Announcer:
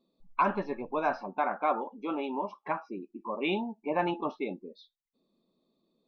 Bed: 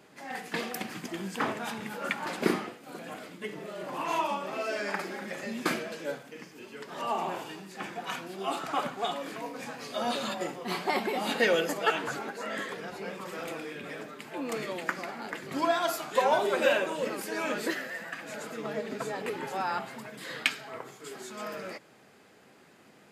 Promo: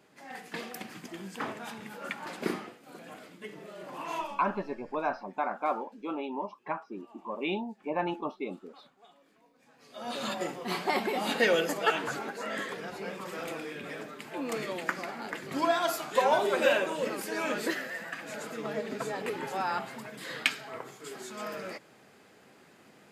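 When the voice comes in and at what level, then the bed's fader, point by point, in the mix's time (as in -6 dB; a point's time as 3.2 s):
4.00 s, -2.0 dB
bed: 4.21 s -5.5 dB
4.76 s -27 dB
9.58 s -27 dB
10.26 s 0 dB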